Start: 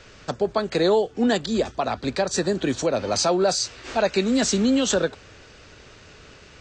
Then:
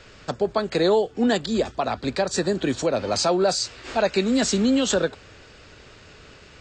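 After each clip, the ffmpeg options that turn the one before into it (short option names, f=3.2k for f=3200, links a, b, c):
-af "bandreject=f=6k:w=12"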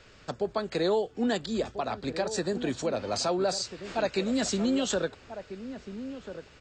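-filter_complex "[0:a]asplit=2[a][b];[b]adelay=1341,volume=-11dB,highshelf=f=4k:g=-30.2[c];[a][c]amix=inputs=2:normalize=0,volume=-7dB"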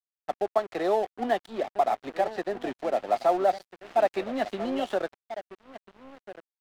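-af "highpass=440,equalizer=f=480:t=q:w=4:g=-7,equalizer=f=730:t=q:w=4:g=7,equalizer=f=1k:t=q:w=4:g=-5,equalizer=f=1.5k:t=q:w=4:g=-8,equalizer=f=2.4k:t=q:w=4:g=-8,lowpass=f=2.6k:w=0.5412,lowpass=f=2.6k:w=1.3066,aeval=exprs='sgn(val(0))*max(abs(val(0))-0.00473,0)':c=same,volume=7dB"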